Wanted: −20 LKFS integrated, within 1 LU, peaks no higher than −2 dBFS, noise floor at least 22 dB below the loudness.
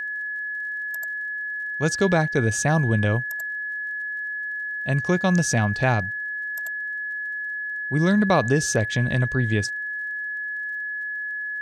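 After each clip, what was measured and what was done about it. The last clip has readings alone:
crackle rate 37 per second; interfering tone 1,700 Hz; level of the tone −27 dBFS; integrated loudness −24.0 LKFS; sample peak −6.5 dBFS; target loudness −20.0 LKFS
→ click removal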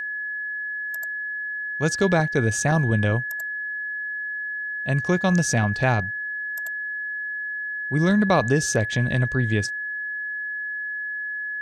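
crackle rate 0.17 per second; interfering tone 1,700 Hz; level of the tone −27 dBFS
→ notch filter 1,700 Hz, Q 30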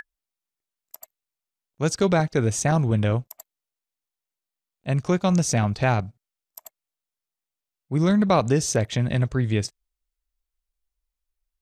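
interfering tone none found; integrated loudness −23.0 LKFS; sample peak −7.5 dBFS; target loudness −20.0 LKFS
→ level +3 dB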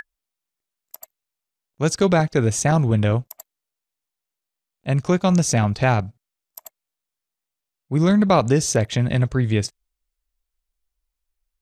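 integrated loudness −20.0 LKFS; sample peak −4.5 dBFS; background noise floor −85 dBFS

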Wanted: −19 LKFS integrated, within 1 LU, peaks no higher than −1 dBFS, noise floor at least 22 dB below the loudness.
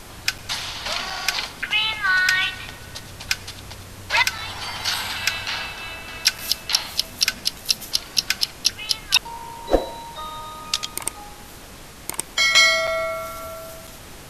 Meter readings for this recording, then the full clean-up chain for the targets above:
number of dropouts 7; longest dropout 5.2 ms; background noise floor −41 dBFS; target noise floor −44 dBFS; integrated loudness −21.5 LKFS; sample peak −1.5 dBFS; target loudness −19.0 LKFS
→ repair the gap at 0:00.38/0:01.10/0:02.28/0:04.38/0:06.38/0:12.87/0:13.87, 5.2 ms
noise reduction from a noise print 6 dB
level +2.5 dB
brickwall limiter −1 dBFS

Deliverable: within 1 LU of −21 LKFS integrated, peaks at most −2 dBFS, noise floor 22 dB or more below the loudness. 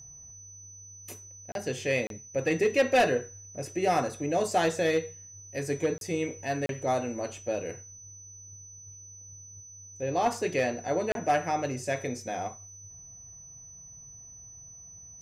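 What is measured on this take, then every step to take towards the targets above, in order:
number of dropouts 5; longest dropout 32 ms; interfering tone 6,000 Hz; level of the tone −46 dBFS; integrated loudness −29.5 LKFS; sample peak −15.0 dBFS; target loudness −21.0 LKFS
→ repair the gap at 0:01.52/0:02.07/0:05.98/0:06.66/0:11.12, 32 ms
notch filter 6,000 Hz, Q 30
level +8.5 dB

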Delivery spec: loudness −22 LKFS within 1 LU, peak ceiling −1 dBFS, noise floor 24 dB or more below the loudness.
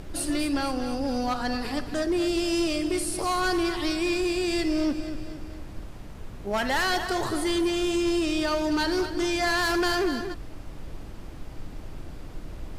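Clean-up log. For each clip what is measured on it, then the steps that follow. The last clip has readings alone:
background noise floor −40 dBFS; target noise floor −51 dBFS; integrated loudness −26.5 LKFS; sample peak −16.5 dBFS; target loudness −22.0 LKFS
→ noise reduction from a noise print 11 dB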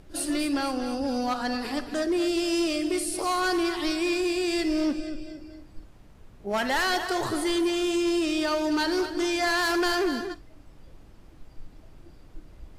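background noise floor −51 dBFS; integrated loudness −26.5 LKFS; sample peak −17.5 dBFS; target loudness −22.0 LKFS
→ level +4.5 dB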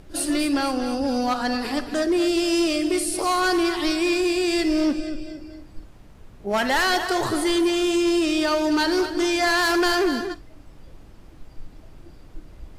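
integrated loudness −22.0 LKFS; sample peak −13.0 dBFS; background noise floor −46 dBFS

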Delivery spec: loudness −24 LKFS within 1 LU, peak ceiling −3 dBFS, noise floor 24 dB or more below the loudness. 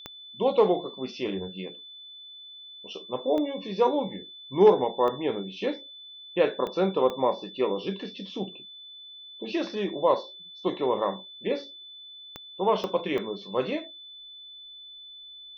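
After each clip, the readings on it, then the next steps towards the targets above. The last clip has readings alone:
number of clicks 8; interfering tone 3,500 Hz; level of the tone −43 dBFS; integrated loudness −27.5 LKFS; sample peak −7.5 dBFS; target loudness −24.0 LKFS
→ click removal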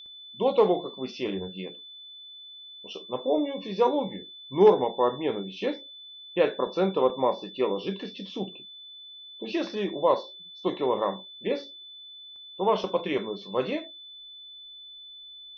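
number of clicks 0; interfering tone 3,500 Hz; level of the tone −43 dBFS
→ notch filter 3,500 Hz, Q 30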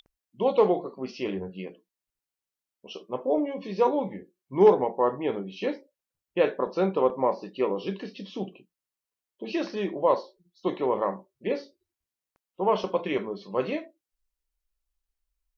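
interfering tone none found; integrated loudness −27.5 LKFS; sample peak −7.5 dBFS; target loudness −24.0 LKFS
→ level +3.5 dB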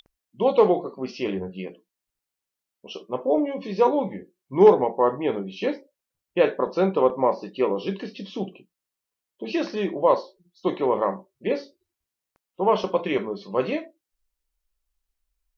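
integrated loudness −24.0 LKFS; sample peak −4.0 dBFS; background noise floor −86 dBFS

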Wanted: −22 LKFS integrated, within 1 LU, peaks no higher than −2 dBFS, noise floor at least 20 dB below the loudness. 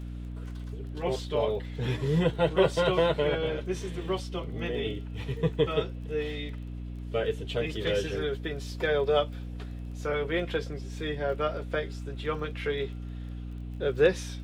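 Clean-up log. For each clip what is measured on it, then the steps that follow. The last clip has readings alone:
crackle rate 21 per second; mains hum 60 Hz; hum harmonics up to 300 Hz; level of the hum −35 dBFS; integrated loudness −30.5 LKFS; sample peak −10.0 dBFS; target loudness −22.0 LKFS
→ click removal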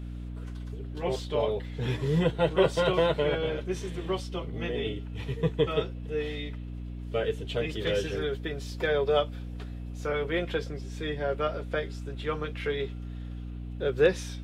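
crackle rate 0 per second; mains hum 60 Hz; hum harmonics up to 300 Hz; level of the hum −35 dBFS
→ mains-hum notches 60/120/180/240/300 Hz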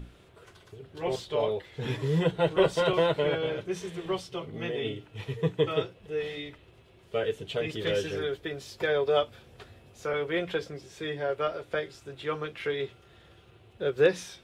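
mains hum none found; integrated loudness −30.0 LKFS; sample peak −10.5 dBFS; target loudness −22.0 LKFS
→ level +8 dB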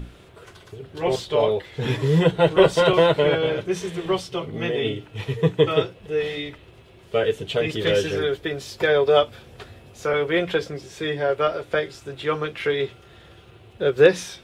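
integrated loudness −22.0 LKFS; sample peak −2.5 dBFS; background noise floor −49 dBFS

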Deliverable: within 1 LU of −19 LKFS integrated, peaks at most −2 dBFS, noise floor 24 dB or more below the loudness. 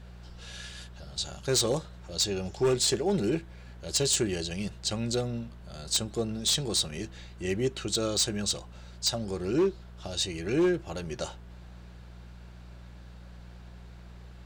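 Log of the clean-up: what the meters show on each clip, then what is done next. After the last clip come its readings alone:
share of clipped samples 0.5%; peaks flattened at −19.5 dBFS; mains hum 60 Hz; hum harmonics up to 180 Hz; level of the hum −44 dBFS; integrated loudness −29.0 LKFS; sample peak −19.5 dBFS; target loudness −19.0 LKFS
→ clipped peaks rebuilt −19.5 dBFS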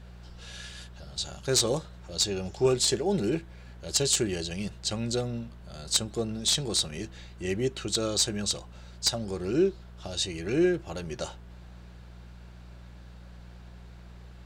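share of clipped samples 0.0%; mains hum 60 Hz; hum harmonics up to 180 Hz; level of the hum −44 dBFS
→ hum removal 60 Hz, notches 3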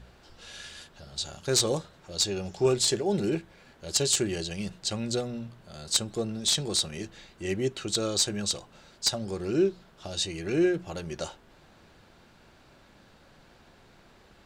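mains hum none found; integrated loudness −28.5 LKFS; sample peak −10.5 dBFS; target loudness −19.0 LKFS
→ level +9.5 dB
brickwall limiter −2 dBFS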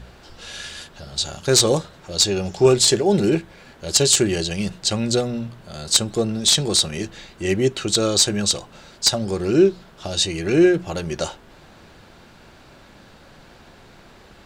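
integrated loudness −19.5 LKFS; sample peak −2.0 dBFS; background noise floor −48 dBFS

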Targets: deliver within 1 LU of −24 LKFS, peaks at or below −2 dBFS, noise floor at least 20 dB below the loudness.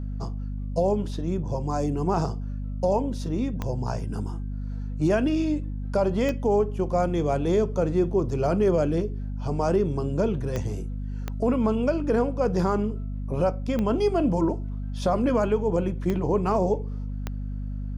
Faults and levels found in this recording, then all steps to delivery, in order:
number of clicks 7; mains hum 50 Hz; hum harmonics up to 250 Hz; level of the hum −28 dBFS; integrated loudness −26.0 LKFS; sample peak −11.0 dBFS; target loudness −24.0 LKFS
→ click removal
mains-hum notches 50/100/150/200/250 Hz
level +2 dB

